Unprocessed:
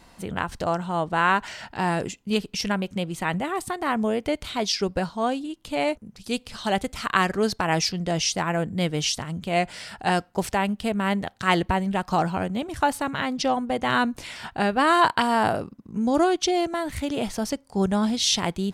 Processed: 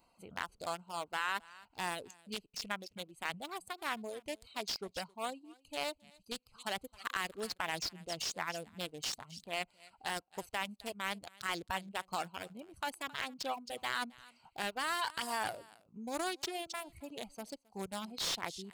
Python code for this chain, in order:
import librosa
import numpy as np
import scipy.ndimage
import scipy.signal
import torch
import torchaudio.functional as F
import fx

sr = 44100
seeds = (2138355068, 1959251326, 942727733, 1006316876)

p1 = fx.wiener(x, sr, points=25)
p2 = F.preemphasis(torch.from_numpy(p1), 0.97).numpy()
p3 = p2 + fx.echo_single(p2, sr, ms=267, db=-15.0, dry=0)
p4 = fx.dereverb_blind(p3, sr, rt60_s=1.5)
p5 = fx.over_compress(p4, sr, threshold_db=-41.0, ratio=-0.5)
p6 = p4 + (p5 * librosa.db_to_amplitude(0.5))
p7 = fx.notch(p6, sr, hz=5900.0, q=8.3)
p8 = fx.slew_limit(p7, sr, full_power_hz=120.0)
y = p8 * librosa.db_to_amplitude(-1.5)